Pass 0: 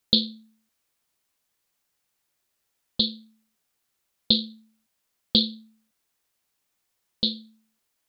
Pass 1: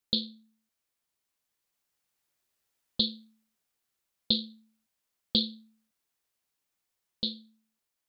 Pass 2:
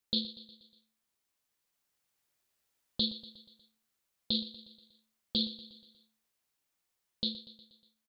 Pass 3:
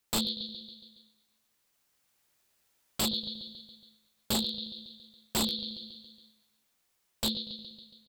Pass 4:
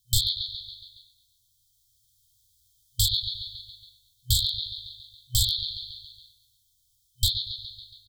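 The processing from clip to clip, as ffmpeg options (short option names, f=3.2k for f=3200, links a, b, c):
-af "dynaudnorm=f=580:g=5:m=11.5dB,volume=-8.5dB"
-af "alimiter=limit=-18.5dB:level=0:latency=1:release=20,aecho=1:1:120|240|360|480|600:0.178|0.0978|0.0538|0.0296|0.0163"
-af "aecho=1:1:139|278|417|556|695|834:0.266|0.152|0.0864|0.0493|0.0281|0.016,aeval=exprs='0.0335*(abs(mod(val(0)/0.0335+3,4)-2)-1)':c=same,volume=7dB"
-af "afftfilt=real='re*(1-between(b*sr/4096,120,3100))':imag='im*(1-between(b*sr/4096,120,3100))':win_size=4096:overlap=0.75,lowshelf=f=440:g=11.5,volume=7dB"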